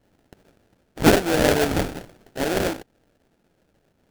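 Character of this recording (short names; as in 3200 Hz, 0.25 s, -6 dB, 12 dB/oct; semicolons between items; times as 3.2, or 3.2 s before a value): aliases and images of a low sample rate 1100 Hz, jitter 20%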